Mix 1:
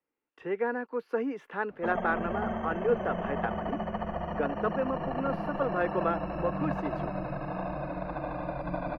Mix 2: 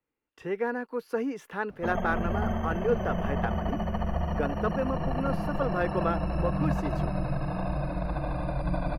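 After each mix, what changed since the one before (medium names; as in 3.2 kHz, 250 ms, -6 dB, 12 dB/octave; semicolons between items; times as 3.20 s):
master: remove three-band isolator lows -13 dB, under 190 Hz, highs -18 dB, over 3.4 kHz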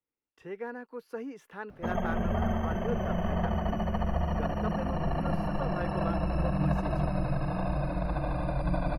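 speech -8.5 dB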